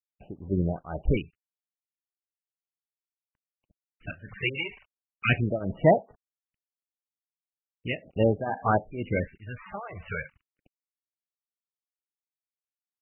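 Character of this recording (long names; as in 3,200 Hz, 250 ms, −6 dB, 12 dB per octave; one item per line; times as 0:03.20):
a quantiser's noise floor 8 bits, dither none
phaser sweep stages 2, 0.38 Hz, lowest notch 240–2,600 Hz
tremolo triangle 2.1 Hz, depth 90%
MP3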